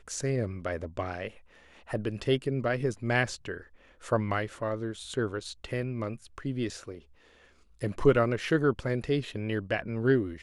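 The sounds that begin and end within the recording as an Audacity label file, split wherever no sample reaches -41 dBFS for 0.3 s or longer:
1.880000	3.620000	sound
4.030000	6.990000	sound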